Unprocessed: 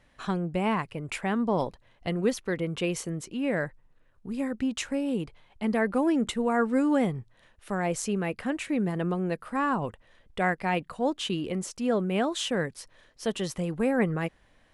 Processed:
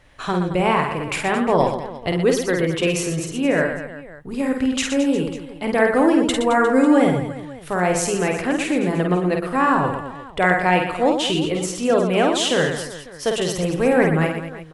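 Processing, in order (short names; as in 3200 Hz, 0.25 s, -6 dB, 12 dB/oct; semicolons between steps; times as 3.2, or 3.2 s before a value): bell 210 Hz -13 dB 0.26 oct; reverse bouncing-ball echo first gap 50 ms, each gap 1.4×, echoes 5; gain +8.5 dB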